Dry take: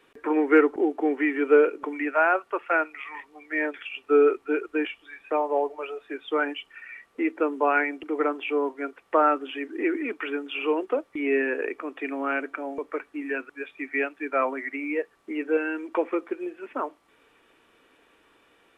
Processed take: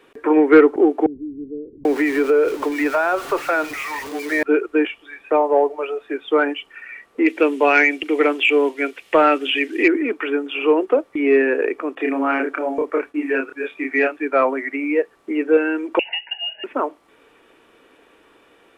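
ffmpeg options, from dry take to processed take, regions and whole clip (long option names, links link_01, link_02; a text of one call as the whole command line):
ffmpeg -i in.wav -filter_complex "[0:a]asettb=1/sr,asplit=3[link_01][link_02][link_03];[link_01]atrim=end=1.064[link_04];[link_02]atrim=start=1.06:end=4.43,asetpts=PTS-STARTPTS,afade=type=in:duration=0.004:curve=qsin,afade=type=out:start_time=3.366:duration=0.004:curve=qsin,aeval=exprs='val(0)+0.5*0.02*sgn(val(0))':channel_layout=same,acrossover=split=210[link_05][link_06];[link_06]adelay=790[link_07];[link_05][link_07]amix=inputs=2:normalize=0,atrim=end_sample=148617,acompressor=threshold=-21dB:ratio=6:attack=3.2:release=140:knee=1:detection=peak[link_08];[link_03]atrim=start=4.426[link_09];[link_04][link_08]acrossfade=duration=0.004:curve1=hsin:curve2=qsin[link_10];[link_10][link_09]acrossfade=duration=0.004:curve1=qsin:curve2=hsin,asettb=1/sr,asplit=3[link_11][link_12][link_13];[link_11]atrim=end=7.264[link_14];[link_12]atrim=start=7.26:end=9.88,asetpts=PTS-STARTPTS,afade=type=in:duration=0.004:curve=qsin,afade=type=out:start_time=2.616:duration=0.004:curve=qsin,acrossover=split=2600[link_15][link_16];[link_16]acompressor=threshold=-43dB:ratio=4:attack=1:release=60[link_17];[link_15][link_17]amix=inputs=2:normalize=0,highshelf=frequency=1800:width_type=q:width=1.5:gain=12.5[link_18];[link_13]atrim=start=9.876[link_19];[link_14][link_18]acrossfade=duration=0.004:curve1=hsin:curve2=qsin[link_20];[link_20][link_19]acrossfade=duration=0.004:curve1=qsin:curve2=hsin,asettb=1/sr,asplit=3[link_21][link_22][link_23];[link_21]atrim=end=11.954[link_24];[link_22]atrim=start=11.95:end=14.17,asetpts=PTS-STARTPTS,afade=type=in:duration=0.004:curve=qsin,afade=type=out:start_time=2.216:duration=0.004:curve=qsin,agate=range=-33dB:threshold=-55dB:ratio=3:release=100:detection=peak,asplit=2[link_25][link_26];[link_26]adelay=30,volume=-2.5dB[link_27];[link_25][link_27]amix=inputs=2:normalize=0,atrim=end_sample=97902[link_28];[link_23]atrim=start=14.166[link_29];[link_24][link_28]acrossfade=duration=0.004:curve1=hsin:curve2=qsin[link_30];[link_30][link_29]acrossfade=duration=0.004:curve1=qsin:curve2=hsin,asettb=1/sr,asplit=3[link_31][link_32][link_33];[link_31]atrim=end=15.994[link_34];[link_32]atrim=start=15.99:end=16.64,asetpts=PTS-STARTPTS,afade=type=in:duration=0.004:curve=qsin,afade=type=out:start_time=0.646:duration=0.004:curve=qsin,lowpass=frequency=2700:width_type=q:width=0.5098,lowpass=frequency=2700:width_type=q:width=0.6013,lowpass=frequency=2700:width_type=q:width=0.9,lowpass=frequency=2700:width_type=q:width=2.563,afreqshift=-3200,acompressor=threshold=-26dB:ratio=5:attack=3.2:release=140:knee=1:detection=peak,asuperstop=centerf=1200:order=8:qfactor=2.2[link_35];[link_33]atrim=start=16.636[link_36];[link_34][link_35]acrossfade=duration=0.004:curve1=hsin:curve2=qsin[link_37];[link_37][link_36]acrossfade=duration=0.004:curve1=qsin:curve2=hsin,equalizer=frequency=430:width_type=o:width=1.9:gain=4.5,acontrast=36" out.wav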